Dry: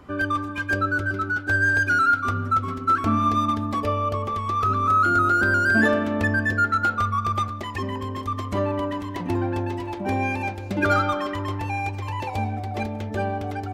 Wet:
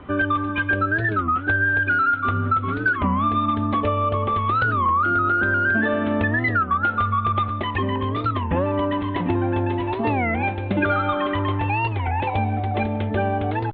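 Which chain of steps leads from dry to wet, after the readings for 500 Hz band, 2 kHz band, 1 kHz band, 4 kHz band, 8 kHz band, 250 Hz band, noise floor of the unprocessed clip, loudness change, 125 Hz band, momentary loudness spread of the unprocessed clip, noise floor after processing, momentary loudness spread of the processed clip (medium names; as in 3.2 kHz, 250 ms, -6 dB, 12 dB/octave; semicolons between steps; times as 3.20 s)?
+2.5 dB, +1.0 dB, +1.5 dB, +1.5 dB, under -35 dB, +2.5 dB, -33 dBFS, +1.5 dB, +3.5 dB, 11 LU, -28 dBFS, 5 LU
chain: compression, threshold -24 dBFS, peak gain reduction 9.5 dB; steep low-pass 3.7 kHz 72 dB/octave; warped record 33 1/3 rpm, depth 250 cents; trim +6.5 dB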